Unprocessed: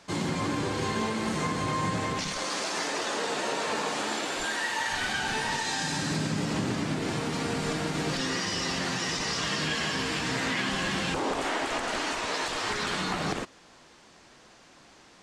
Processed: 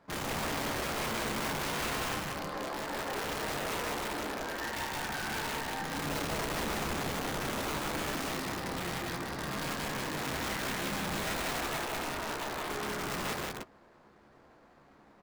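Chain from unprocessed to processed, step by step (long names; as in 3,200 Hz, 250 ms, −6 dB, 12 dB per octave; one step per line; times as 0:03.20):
running median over 15 samples
high-shelf EQ 6,200 Hz −10 dB
wrap-around overflow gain 26.5 dB
double-tracking delay 14 ms −11 dB
on a send: loudspeakers that aren't time-aligned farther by 10 metres −6 dB, 64 metres −1 dB
on the sum: level −5.5 dB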